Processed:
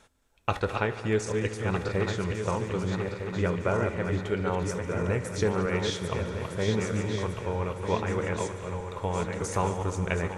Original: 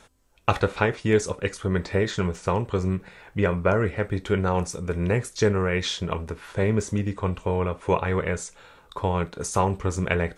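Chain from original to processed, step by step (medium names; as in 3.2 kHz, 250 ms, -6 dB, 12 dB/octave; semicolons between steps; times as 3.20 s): backward echo that repeats 629 ms, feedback 66%, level -5 dB; multi-head delay 73 ms, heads all three, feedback 72%, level -20 dB; trim -6 dB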